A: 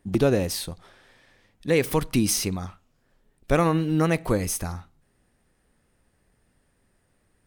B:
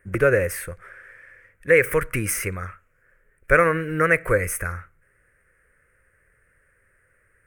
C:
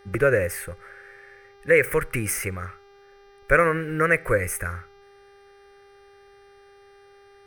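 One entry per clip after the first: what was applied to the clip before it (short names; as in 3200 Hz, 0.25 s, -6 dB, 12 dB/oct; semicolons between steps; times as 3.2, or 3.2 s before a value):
EQ curve 110 Hz 0 dB, 250 Hz -13 dB, 520 Hz +6 dB, 800 Hz -13 dB, 1500 Hz +14 dB, 2200 Hz +10 dB, 3800 Hz -22 dB, 9000 Hz 0 dB; gain +1.5 dB
buzz 400 Hz, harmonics 15, -51 dBFS -7 dB/oct; gain -1.5 dB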